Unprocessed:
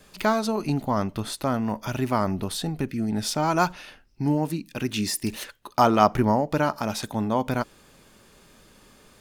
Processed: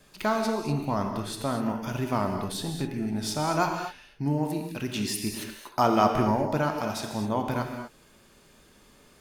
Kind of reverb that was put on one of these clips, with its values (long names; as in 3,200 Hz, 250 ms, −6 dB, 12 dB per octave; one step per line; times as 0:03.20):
reverb whose tail is shaped and stops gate 270 ms flat, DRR 3 dB
level −4.5 dB